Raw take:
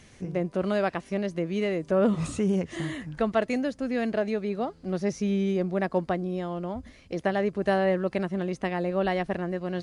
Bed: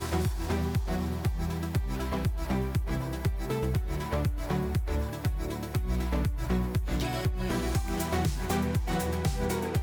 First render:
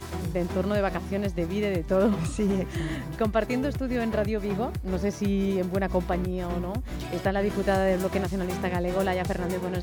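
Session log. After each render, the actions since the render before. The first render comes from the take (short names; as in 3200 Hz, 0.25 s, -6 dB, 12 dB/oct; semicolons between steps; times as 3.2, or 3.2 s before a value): add bed -4.5 dB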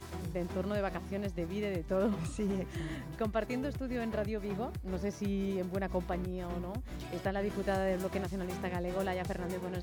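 gain -8.5 dB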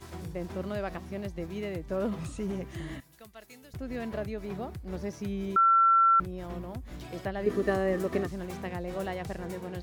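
3–3.74 pre-emphasis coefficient 0.9; 5.56–6.2 bleep 1350 Hz -18 dBFS; 7.46–8.32 small resonant body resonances 280/420/1200/1800 Hz, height 13 dB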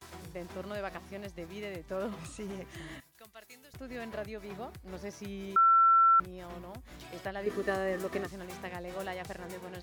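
gate with hold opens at -45 dBFS; low shelf 480 Hz -9.5 dB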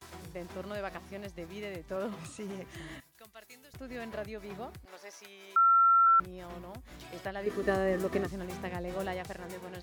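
1.96–2.67 HPF 84 Hz 24 dB/oct; 4.85–6.07 HPF 700 Hz; 7.62–9.21 low shelf 470 Hz +6.5 dB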